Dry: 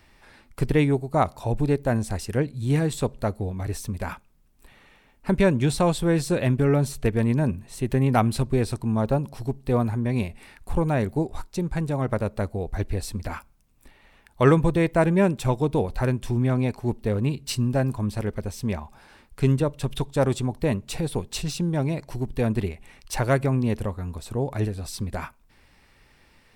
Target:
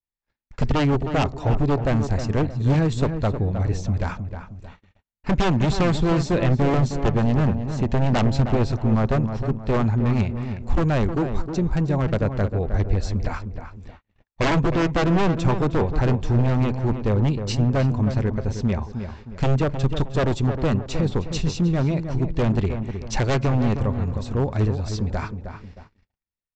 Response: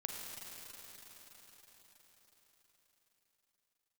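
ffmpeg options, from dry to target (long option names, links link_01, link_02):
-filter_complex "[0:a]aresample=16000,aeval=exprs='0.126*(abs(mod(val(0)/0.126+3,4)-2)-1)':channel_layout=same,aresample=44100,lowshelf=frequency=130:gain=6,asplit=2[link_01][link_02];[link_02]adelay=312,lowpass=frequency=1800:poles=1,volume=-8dB,asplit=2[link_03][link_04];[link_04]adelay=312,lowpass=frequency=1800:poles=1,volume=0.39,asplit=2[link_05][link_06];[link_06]adelay=312,lowpass=frequency=1800:poles=1,volume=0.39,asplit=2[link_07][link_08];[link_08]adelay=312,lowpass=frequency=1800:poles=1,volume=0.39[link_09];[link_01][link_03][link_05][link_07][link_09]amix=inputs=5:normalize=0,agate=range=-47dB:threshold=-44dB:ratio=16:detection=peak,adynamicequalizer=threshold=0.00631:dfrequency=2100:dqfactor=0.7:tfrequency=2100:tqfactor=0.7:attack=5:release=100:ratio=0.375:range=1.5:mode=cutabove:tftype=highshelf,volume=2.5dB"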